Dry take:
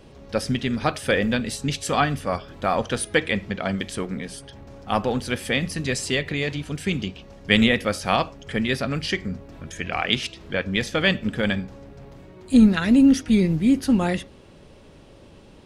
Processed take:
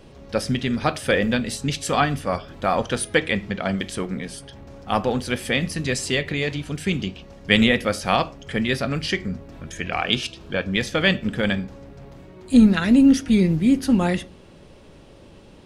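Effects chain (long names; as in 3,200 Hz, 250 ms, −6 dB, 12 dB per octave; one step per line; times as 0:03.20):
0:10.02–0:10.67: notch filter 2,000 Hz, Q 5.3
on a send: convolution reverb RT60 0.35 s, pre-delay 6 ms, DRR 17 dB
on the sum: level +1 dB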